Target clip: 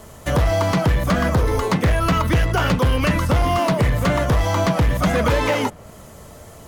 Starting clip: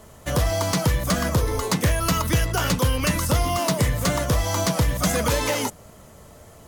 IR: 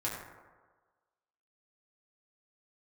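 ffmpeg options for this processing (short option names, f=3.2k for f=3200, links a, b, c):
-filter_complex "[0:a]acrossover=split=3300[a][b];[b]acompressor=threshold=-43dB:ratio=10[c];[a][c]amix=inputs=2:normalize=0,asoftclip=type=hard:threshold=-18dB,volume=5.5dB"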